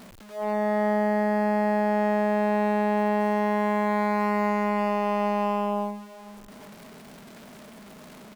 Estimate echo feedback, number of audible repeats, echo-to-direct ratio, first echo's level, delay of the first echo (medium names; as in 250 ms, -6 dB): 42%, 2, -19.5 dB, -20.5 dB, 409 ms